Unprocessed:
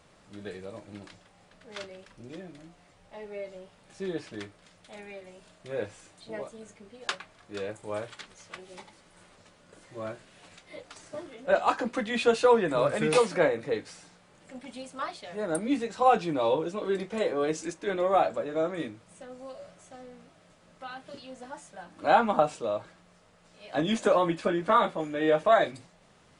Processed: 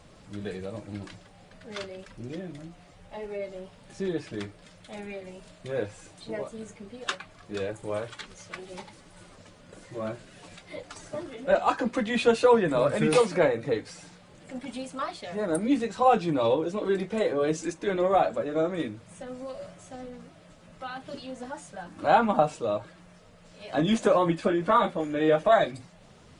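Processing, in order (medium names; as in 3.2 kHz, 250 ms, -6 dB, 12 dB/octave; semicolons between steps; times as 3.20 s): coarse spectral quantiser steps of 15 dB; in parallel at -3 dB: compression, threshold -40 dBFS, peak gain reduction 22 dB; on the sum: bass shelf 240 Hz +6 dB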